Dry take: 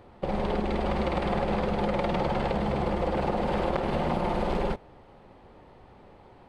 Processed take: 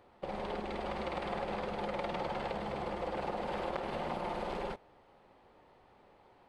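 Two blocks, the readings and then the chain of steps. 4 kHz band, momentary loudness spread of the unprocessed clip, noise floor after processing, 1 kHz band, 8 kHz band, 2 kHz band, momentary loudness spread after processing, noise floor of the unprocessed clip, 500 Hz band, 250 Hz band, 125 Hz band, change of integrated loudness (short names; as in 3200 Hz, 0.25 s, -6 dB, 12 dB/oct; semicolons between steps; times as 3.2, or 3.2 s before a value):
-6.5 dB, 2 LU, -63 dBFS, -7.5 dB, n/a, -7.0 dB, 2 LU, -53 dBFS, -9.0 dB, -12.5 dB, -15.0 dB, -9.5 dB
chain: low shelf 290 Hz -10.5 dB; gain -6.5 dB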